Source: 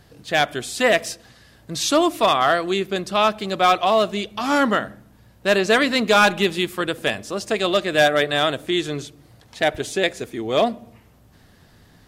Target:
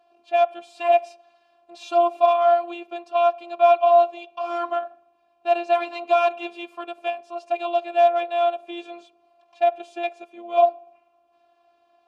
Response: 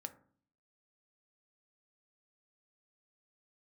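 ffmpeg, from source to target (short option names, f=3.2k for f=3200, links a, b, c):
-filter_complex "[0:a]aeval=exprs='0.473*(cos(1*acos(clip(val(0)/0.473,-1,1)))-cos(1*PI/2))+0.0668*(cos(2*acos(clip(val(0)/0.473,-1,1)))-cos(2*PI/2))':c=same,afftfilt=real='hypot(re,im)*cos(PI*b)':imag='0':win_size=512:overlap=0.75,asplit=3[a][b][c];[a]bandpass=f=730:t=q:w=8,volume=0dB[d];[b]bandpass=f=1.09k:t=q:w=8,volume=-6dB[e];[c]bandpass=f=2.44k:t=q:w=8,volume=-9dB[f];[d][e][f]amix=inputs=3:normalize=0,volume=7dB"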